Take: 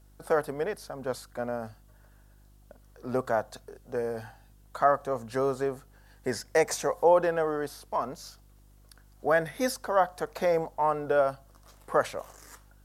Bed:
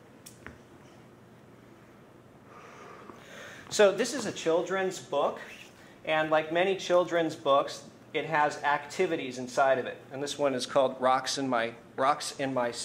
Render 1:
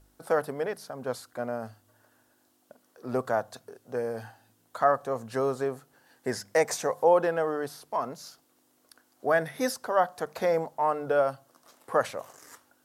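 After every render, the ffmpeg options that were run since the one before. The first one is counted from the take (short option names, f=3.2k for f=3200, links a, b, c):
-af "bandreject=f=50:t=h:w=4,bandreject=f=100:t=h:w=4,bandreject=f=150:t=h:w=4,bandreject=f=200:t=h:w=4"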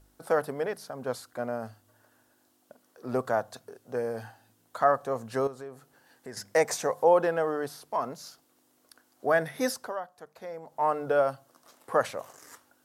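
-filter_complex "[0:a]asettb=1/sr,asplit=3[a][b][c];[a]atrim=end=5.474[d];[b]atrim=start=5.47:end=6.37,asetpts=PTS-STARTPTS,afade=t=in:d=0.004:c=qsin,afade=t=out:st=0.896:d=0.004:c=qsin,acompressor=threshold=-47dB:ratio=2:attack=3.2:release=140:knee=1:detection=peak[e];[c]atrim=start=6.366[f];[d][e]acrossfade=d=0.004:c1=hsin:c2=qsin[g];[g][f]acrossfade=d=0.004:c1=qsin:c2=hsin,asplit=3[h][i][j];[h]atrim=end=10,asetpts=PTS-STARTPTS,afade=t=out:st=9.79:d=0.21:silence=0.188365[k];[i]atrim=start=10:end=10.62,asetpts=PTS-STARTPTS,volume=-14.5dB[l];[j]atrim=start=10.62,asetpts=PTS-STARTPTS,afade=t=in:d=0.21:silence=0.188365[m];[k][l][m]concat=n=3:v=0:a=1"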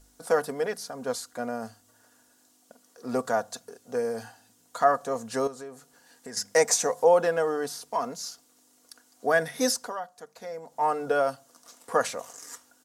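-af "equalizer=f=6.9k:w=0.84:g=10.5,aecho=1:1:4.2:0.45"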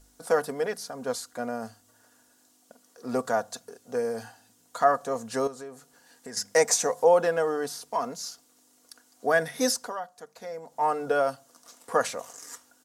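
-af anull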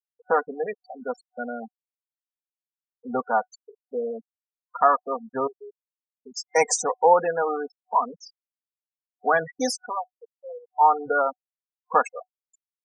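-af "afftfilt=real='re*gte(hypot(re,im),0.0631)':imag='im*gte(hypot(re,im),0.0631)':win_size=1024:overlap=0.75,superequalizer=9b=2.82:10b=2.24:12b=3.16"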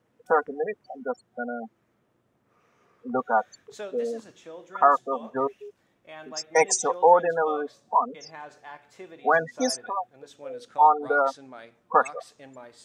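-filter_complex "[1:a]volume=-16dB[a];[0:a][a]amix=inputs=2:normalize=0"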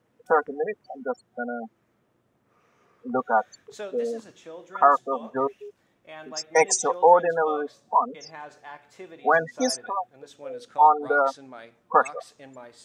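-af "volume=1dB"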